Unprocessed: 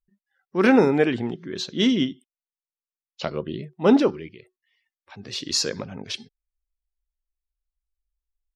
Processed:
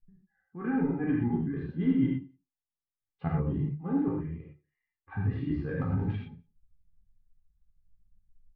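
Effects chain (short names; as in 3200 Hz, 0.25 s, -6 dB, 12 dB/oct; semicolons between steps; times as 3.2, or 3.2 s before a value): LPF 1700 Hz 24 dB/oct; comb 2.5 ms, depth 88%; transient shaper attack +2 dB, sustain -10 dB; reverse; compressor 10:1, threshold -30 dBFS, peak gain reduction 22 dB; reverse; flange 0.99 Hz, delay 9.4 ms, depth 5.1 ms, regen +33%; resonant low shelf 280 Hz +13 dB, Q 3; on a send: feedback echo 88 ms, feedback 34%, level -23.5 dB; on the sum: non-linear reverb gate 0.14 s flat, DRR -3.5 dB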